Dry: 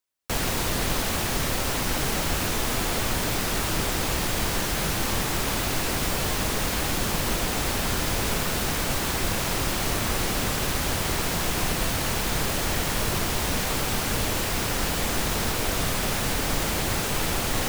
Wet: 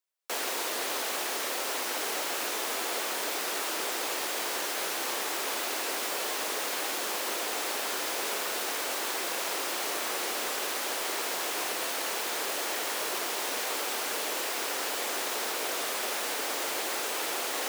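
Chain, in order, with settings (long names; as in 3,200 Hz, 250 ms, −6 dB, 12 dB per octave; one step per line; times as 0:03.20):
high-pass filter 360 Hz 24 dB per octave
level −4 dB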